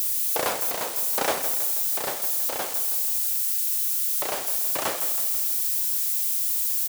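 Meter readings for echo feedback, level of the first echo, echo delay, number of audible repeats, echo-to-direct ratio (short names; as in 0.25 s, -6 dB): 54%, -11.0 dB, 0.161 s, 5, -9.5 dB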